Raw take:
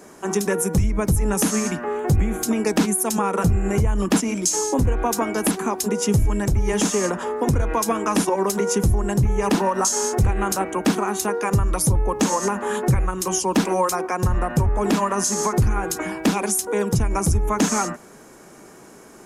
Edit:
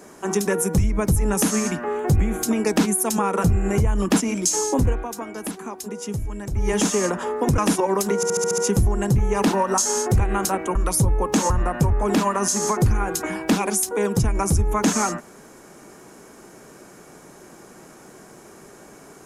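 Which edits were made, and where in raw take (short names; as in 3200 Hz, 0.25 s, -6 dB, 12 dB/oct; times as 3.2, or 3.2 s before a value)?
4.9–6.65 dip -9.5 dB, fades 0.15 s
7.58–8.07 cut
8.65 stutter 0.07 s, 7 plays
10.82–11.62 cut
12.37–14.26 cut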